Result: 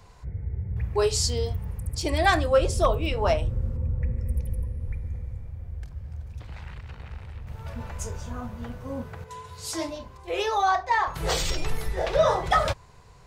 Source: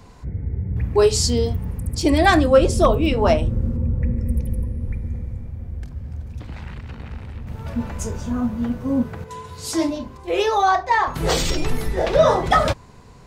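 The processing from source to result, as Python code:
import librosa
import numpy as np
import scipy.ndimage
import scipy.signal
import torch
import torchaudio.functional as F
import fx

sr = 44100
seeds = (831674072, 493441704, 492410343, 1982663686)

y = fx.peak_eq(x, sr, hz=250.0, db=-12.5, octaves=0.96)
y = y * 10.0 ** (-4.5 / 20.0)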